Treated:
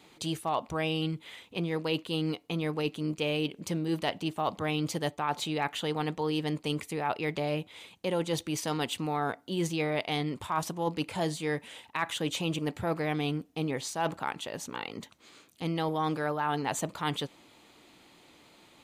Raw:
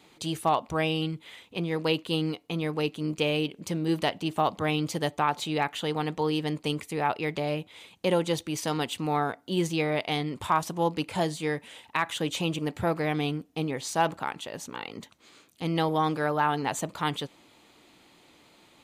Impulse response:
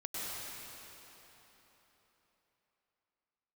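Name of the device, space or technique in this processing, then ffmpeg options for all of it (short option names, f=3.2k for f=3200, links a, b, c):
compression on the reversed sound: -af "areverse,acompressor=threshold=-26dB:ratio=6,areverse"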